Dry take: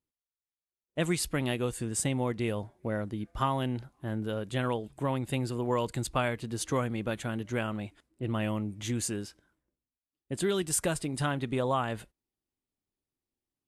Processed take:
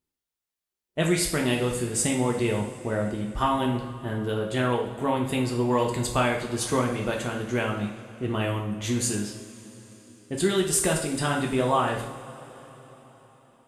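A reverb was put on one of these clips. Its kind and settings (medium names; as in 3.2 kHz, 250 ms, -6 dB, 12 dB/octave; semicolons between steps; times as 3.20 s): two-slope reverb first 0.57 s, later 4.6 s, from -19 dB, DRR 0 dB; trim +3.5 dB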